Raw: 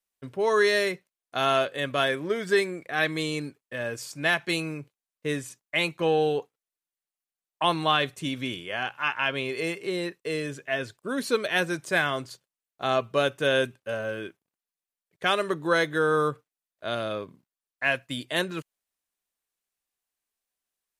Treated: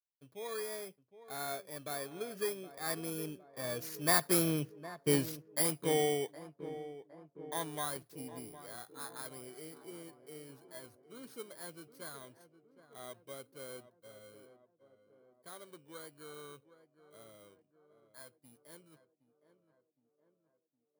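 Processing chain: FFT order left unsorted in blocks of 16 samples; Doppler pass-by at 4.75, 14 m/s, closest 5.7 m; tape echo 0.764 s, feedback 67%, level -12 dB, low-pass 1100 Hz; gain +2.5 dB

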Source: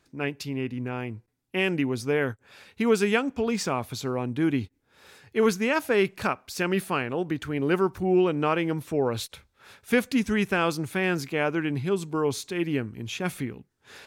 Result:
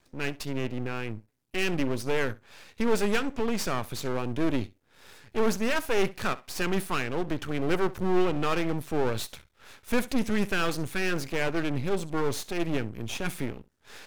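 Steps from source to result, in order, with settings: one diode to ground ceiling -18.5 dBFS; flutter echo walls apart 11.4 m, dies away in 0.2 s; half-wave rectifier; gain +4.5 dB

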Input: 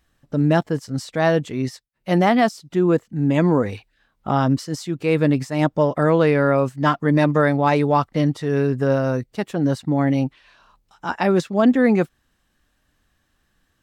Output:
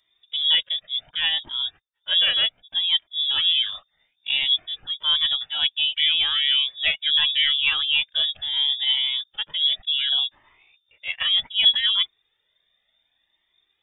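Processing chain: inverted band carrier 3600 Hz; cascading flanger rising 0.67 Hz

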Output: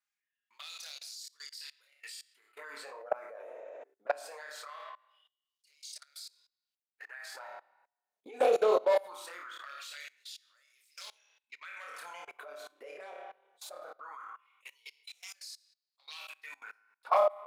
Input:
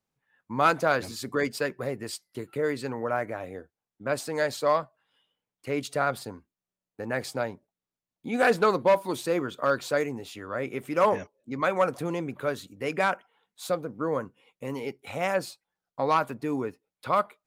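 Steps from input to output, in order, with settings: envelope flanger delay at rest 4.9 ms, full sweep at -19 dBFS; overloaded stage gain 18.5 dB; bell 62 Hz -9 dB 1.6 oct; flutter echo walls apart 4.8 m, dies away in 0.34 s; LFO high-pass sine 0.21 Hz 460–5000 Hz; on a send at -11.5 dB: reverb RT60 0.70 s, pre-delay 40 ms; on the sum: spectral repair 3.5–3.8, 220–8200 Hz before; level quantiser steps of 23 dB; low shelf 140 Hz -11 dB

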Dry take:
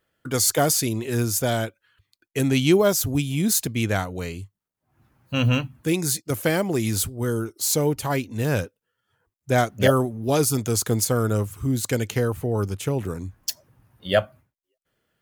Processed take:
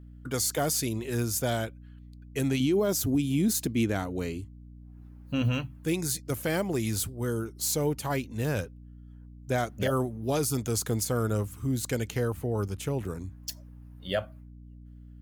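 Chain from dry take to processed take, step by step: 2.6–5.42 bell 290 Hz +9.5 dB 1.1 oct; limiter -12.5 dBFS, peak gain reduction 11.5 dB; hum 60 Hz, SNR 17 dB; gain -5.5 dB

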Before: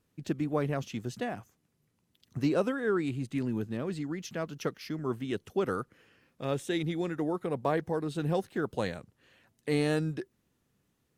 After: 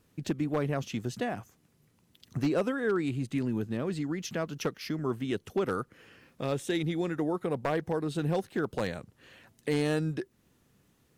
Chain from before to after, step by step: compressor 1.5:1, threshold -47 dBFS, peak gain reduction 9 dB; wavefolder -28 dBFS; gain +8 dB

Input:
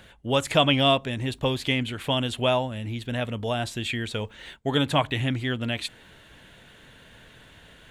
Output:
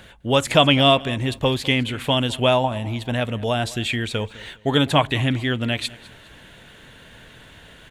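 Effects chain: 2.64–3.13 band shelf 850 Hz +11.5 dB 1 oct; on a send: feedback echo 0.205 s, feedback 32%, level -20.5 dB; on the sum: gain +5 dB

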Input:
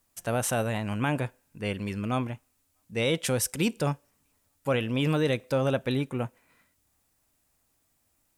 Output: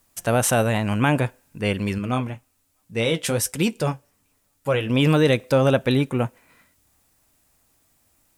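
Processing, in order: 1.98–4.9 flange 1.2 Hz, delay 5.2 ms, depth 7.3 ms, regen -47%; gain +8 dB

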